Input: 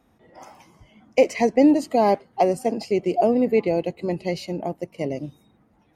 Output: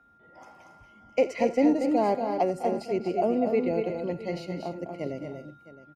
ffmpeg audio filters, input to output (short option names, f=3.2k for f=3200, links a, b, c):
-af "highshelf=f=5.7k:g=-8.5,aeval=exprs='val(0)+0.00251*sin(2*PI*1400*n/s)':c=same,aecho=1:1:82|203|235|278|663:0.133|0.141|0.501|0.178|0.141,volume=-6.5dB"